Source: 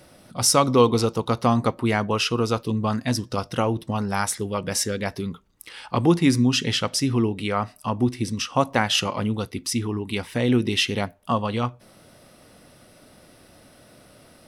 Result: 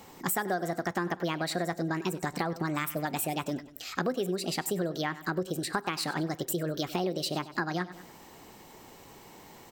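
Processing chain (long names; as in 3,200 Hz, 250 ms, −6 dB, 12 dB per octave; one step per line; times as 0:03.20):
dynamic equaliser 4,400 Hz, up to −6 dB, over −39 dBFS, Q 0.95
on a send: repeating echo 143 ms, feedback 39%, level −18 dB
on the sum: change of speed 1.49×
downward compressor 6 to 1, threshold −28 dBFS, peak gain reduction 15.5 dB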